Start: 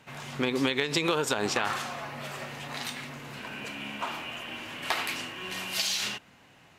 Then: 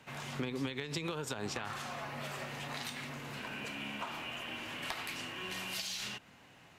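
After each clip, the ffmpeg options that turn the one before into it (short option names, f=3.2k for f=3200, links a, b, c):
-filter_complex "[0:a]acrossover=split=170[a][b];[b]acompressor=threshold=-36dB:ratio=4[c];[a][c]amix=inputs=2:normalize=0,volume=-2dB"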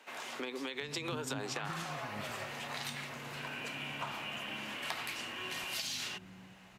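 -filter_complex "[0:a]lowshelf=f=97:g=-8,acrossover=split=260[a][b];[a]adelay=730[c];[c][b]amix=inputs=2:normalize=0,volume=1dB"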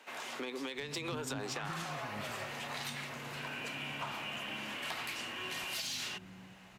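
-af "asoftclip=type=tanh:threshold=-31dB,volume=1dB"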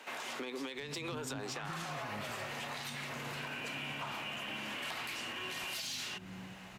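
-af "alimiter=level_in=14.5dB:limit=-24dB:level=0:latency=1:release=205,volume=-14.5dB,volume=5.5dB"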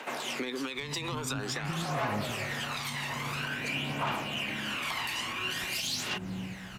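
-af "aphaser=in_gain=1:out_gain=1:delay=1.1:decay=0.51:speed=0.49:type=triangular,volume=5.5dB"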